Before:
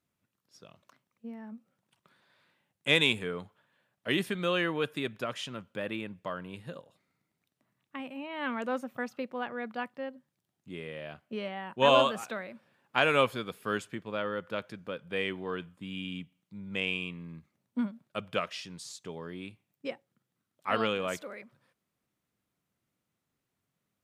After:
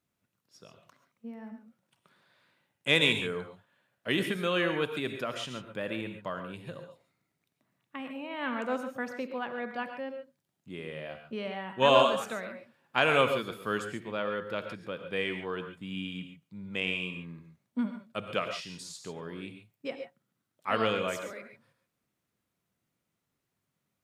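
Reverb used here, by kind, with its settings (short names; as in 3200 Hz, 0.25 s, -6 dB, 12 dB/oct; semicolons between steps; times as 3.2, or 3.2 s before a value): non-linear reverb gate 0.16 s rising, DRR 6.5 dB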